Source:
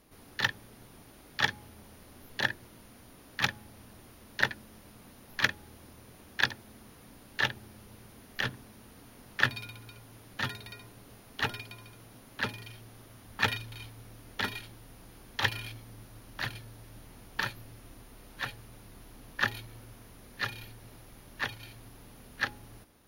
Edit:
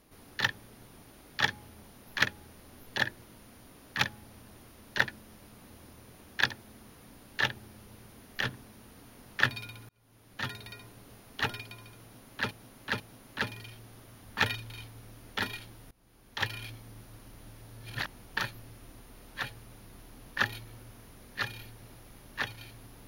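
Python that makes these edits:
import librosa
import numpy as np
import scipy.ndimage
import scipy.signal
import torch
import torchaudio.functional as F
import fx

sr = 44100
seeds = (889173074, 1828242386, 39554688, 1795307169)

y = fx.edit(x, sr, fx.move(start_s=5.13, length_s=0.57, to_s=1.91),
    fx.fade_in_span(start_s=9.89, length_s=0.72),
    fx.repeat(start_s=12.02, length_s=0.49, count=3),
    fx.fade_in_from(start_s=14.93, length_s=0.81, floor_db=-21.5),
    fx.reverse_span(start_s=16.37, length_s=0.73), tone=tone)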